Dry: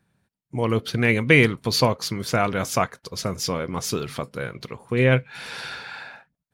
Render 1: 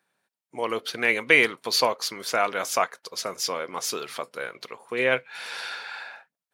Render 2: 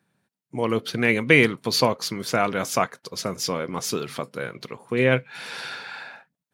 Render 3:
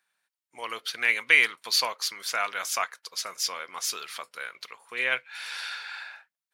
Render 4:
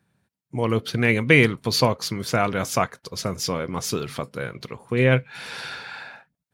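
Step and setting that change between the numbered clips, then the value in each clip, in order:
high-pass filter, corner frequency: 510, 170, 1,300, 61 Hertz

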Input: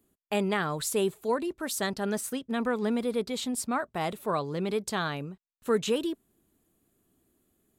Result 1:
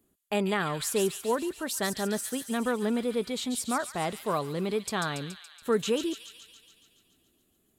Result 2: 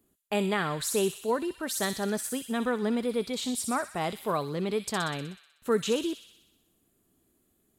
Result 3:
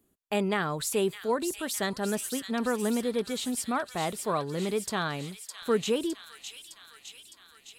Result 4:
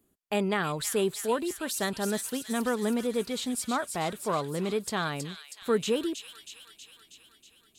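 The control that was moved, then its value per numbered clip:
delay with a high-pass on its return, delay time: 141, 62, 610, 320 milliseconds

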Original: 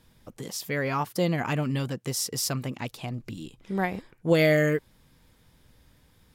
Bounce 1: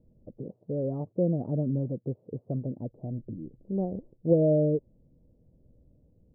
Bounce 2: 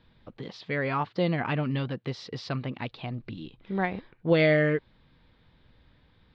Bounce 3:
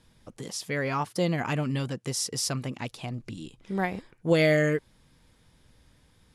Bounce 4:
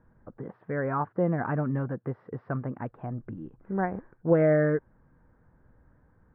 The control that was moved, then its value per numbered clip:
elliptic low-pass filter, frequency: 600, 4,100, 11,000, 1,600 Hertz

